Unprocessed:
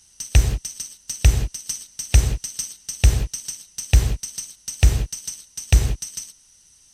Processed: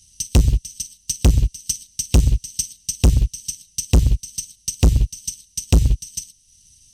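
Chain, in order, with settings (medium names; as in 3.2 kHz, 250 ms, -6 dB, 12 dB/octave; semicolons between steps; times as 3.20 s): FFT filter 110 Hz 0 dB, 260 Hz -8 dB, 640 Hz -27 dB, 1.5 kHz -24 dB, 2.9 kHz -7 dB; transient shaper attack +5 dB, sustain -5 dB; hard clipper -17 dBFS, distortion -2 dB; trim +8.5 dB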